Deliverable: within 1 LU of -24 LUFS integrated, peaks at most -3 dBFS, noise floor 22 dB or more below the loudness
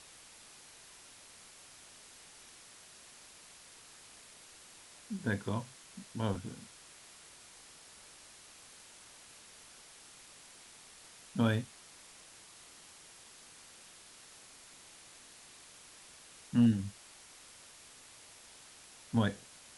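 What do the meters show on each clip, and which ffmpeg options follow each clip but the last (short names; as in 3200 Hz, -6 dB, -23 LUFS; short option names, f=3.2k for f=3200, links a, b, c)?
noise floor -56 dBFS; noise floor target -57 dBFS; loudness -34.5 LUFS; peak -16.5 dBFS; loudness target -24.0 LUFS
-> -af "afftdn=nr=6:nf=-56"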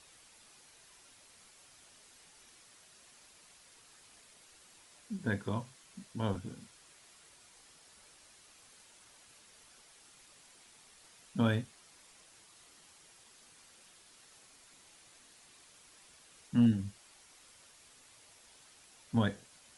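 noise floor -61 dBFS; loudness -34.5 LUFS; peak -16.5 dBFS; loudness target -24.0 LUFS
-> -af "volume=10.5dB"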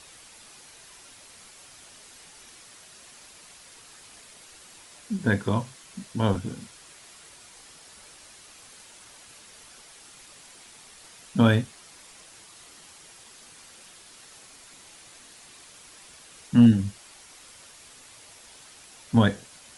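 loudness -24.0 LUFS; peak -6.0 dBFS; noise floor -50 dBFS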